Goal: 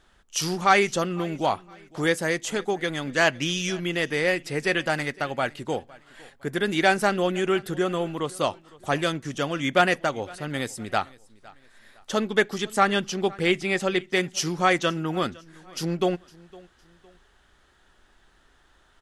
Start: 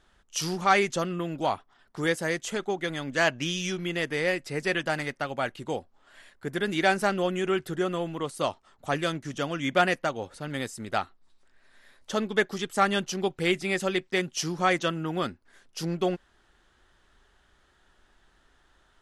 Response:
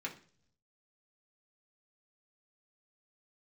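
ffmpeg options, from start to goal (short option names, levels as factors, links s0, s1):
-filter_complex "[0:a]asettb=1/sr,asplit=3[s0][s1][s2];[s0]atrim=end=12.784[s3];[s1]atrim=start=12.78:end=14.07,asetpts=PTS-STARTPTS,afade=t=in:d=0.004:c=qsin,afade=t=out:st=1.286:d=0.004:c=qsin,highshelf=f=9000:g=-10.5[s4];[s2]atrim=start=14.066[s5];[s3][s4]acrossfade=d=0.004:c1=hsin:c2=qsin[s6];[s6][s5]acrossfade=d=0.004:c1=qsin:c2=hsin,aecho=1:1:509|1018:0.0708|0.0255,asplit=2[s7][s8];[1:a]atrim=start_sample=2205,highshelf=f=4200:g=11.5[s9];[s8][s9]afir=irnorm=-1:irlink=0,volume=0.0794[s10];[s7][s10]amix=inputs=2:normalize=0,volume=1.41"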